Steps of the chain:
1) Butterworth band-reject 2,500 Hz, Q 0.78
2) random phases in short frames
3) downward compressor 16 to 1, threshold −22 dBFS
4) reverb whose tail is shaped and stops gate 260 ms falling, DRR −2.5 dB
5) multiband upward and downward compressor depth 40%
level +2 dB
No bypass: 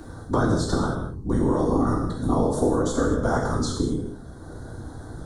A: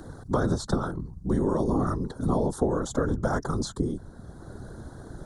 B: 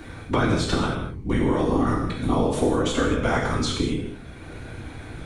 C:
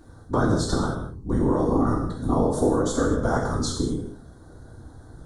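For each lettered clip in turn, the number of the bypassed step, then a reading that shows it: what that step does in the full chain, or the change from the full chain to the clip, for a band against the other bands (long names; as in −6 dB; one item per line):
4, change in integrated loudness −4.0 LU
1, 4 kHz band +7.0 dB
5, change in momentary loudness spread −10 LU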